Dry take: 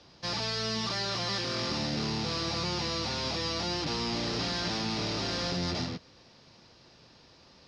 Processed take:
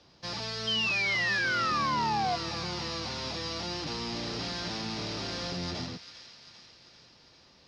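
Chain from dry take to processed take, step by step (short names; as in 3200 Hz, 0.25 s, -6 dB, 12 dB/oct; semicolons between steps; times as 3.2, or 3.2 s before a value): painted sound fall, 0.67–2.36, 690–3200 Hz -26 dBFS; thin delay 0.396 s, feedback 61%, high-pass 1500 Hz, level -11 dB; gain -3.5 dB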